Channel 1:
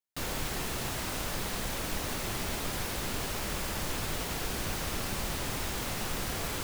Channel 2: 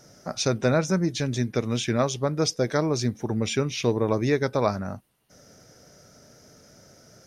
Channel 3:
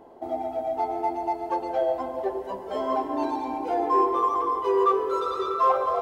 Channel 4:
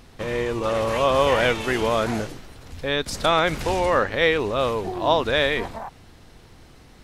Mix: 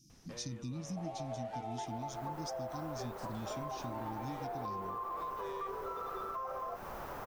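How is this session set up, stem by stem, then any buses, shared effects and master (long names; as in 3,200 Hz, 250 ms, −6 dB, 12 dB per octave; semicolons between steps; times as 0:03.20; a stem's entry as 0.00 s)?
−11.0 dB, 1.70 s, bus A, no send, flat-topped bell 4,300 Hz −11 dB 2.9 octaves; automatic gain control gain up to 11.5 dB
−9.0 dB, 0.00 s, no bus, no send, brick-wall band-stop 340–2,300 Hz; parametric band 2,400 Hz −9 dB 1.2 octaves
−4.0 dB, 0.75 s, bus A, no send, no processing
−11.0 dB, 0.10 s, no bus, no send, soft clipping −22.5 dBFS, distortion −8 dB; automatic ducking −10 dB, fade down 0.45 s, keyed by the second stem
bus A: 0.0 dB, three-way crossover with the lows and the highs turned down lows −14 dB, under 460 Hz, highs −13 dB, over 2,300 Hz; brickwall limiter −25 dBFS, peak gain reduction 8.5 dB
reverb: not used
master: downward compressor 3 to 1, threshold −40 dBFS, peak gain reduction 10 dB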